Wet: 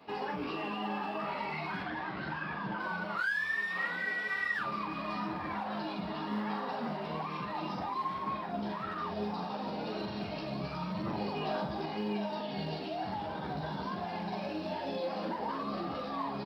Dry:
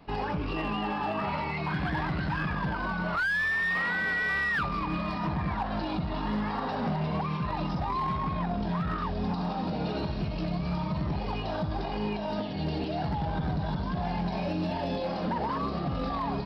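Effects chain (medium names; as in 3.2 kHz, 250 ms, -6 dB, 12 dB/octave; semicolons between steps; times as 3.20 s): high-pass 240 Hz 12 dB/octave; peak limiter -30 dBFS, peak gain reduction 8.5 dB; chorus voices 4, 0.98 Hz, delay 12 ms, depth 3 ms; short-mantissa float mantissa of 6-bit; 1.83–2.80 s: distance through air 100 m; doubling 44 ms -7.5 dB; trim +3.5 dB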